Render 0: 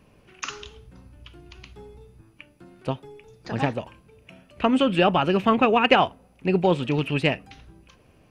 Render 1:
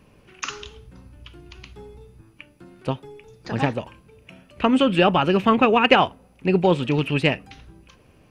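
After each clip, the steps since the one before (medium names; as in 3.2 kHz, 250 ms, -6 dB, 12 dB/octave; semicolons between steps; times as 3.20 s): peaking EQ 680 Hz -3 dB 0.27 oct; trim +2.5 dB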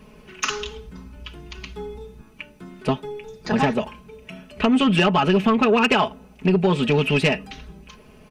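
comb 4.7 ms, depth 83%; compression 10:1, threshold -16 dBFS, peak gain reduction 9 dB; saturation -14.5 dBFS, distortion -16 dB; trim +4.5 dB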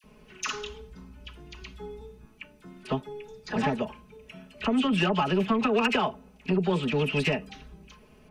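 phase dispersion lows, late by 40 ms, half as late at 1.3 kHz; trim -7 dB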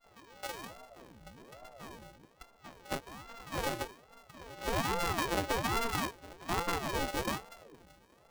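sorted samples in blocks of 64 samples; pre-echo 267 ms -18 dB; ring modulator with a swept carrier 400 Hz, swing 75%, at 1.2 Hz; trim -5.5 dB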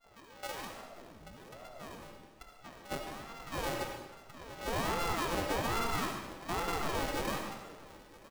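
saturation -27.5 dBFS, distortion -15 dB; delay 968 ms -21.5 dB; reverberation RT60 1.0 s, pre-delay 30 ms, DRR 3 dB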